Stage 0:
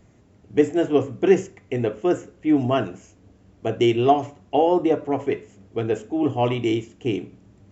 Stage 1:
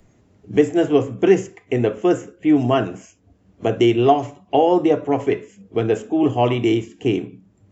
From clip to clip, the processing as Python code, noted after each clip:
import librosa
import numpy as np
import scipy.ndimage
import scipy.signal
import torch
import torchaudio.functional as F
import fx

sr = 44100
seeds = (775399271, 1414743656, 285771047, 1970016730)

y = fx.noise_reduce_blind(x, sr, reduce_db=16)
y = fx.band_squash(y, sr, depth_pct=40)
y = y * librosa.db_to_amplitude(3.5)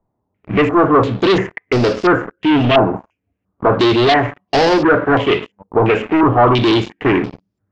y = fx.leveller(x, sr, passes=5)
y = fx.filter_held_lowpass(y, sr, hz=2.9, low_hz=930.0, high_hz=5000.0)
y = y * librosa.db_to_amplitude(-7.5)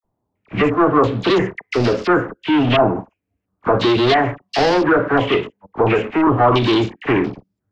y = fx.dispersion(x, sr, late='lows', ms=41.0, hz=1300.0)
y = y * librosa.db_to_amplitude(-2.5)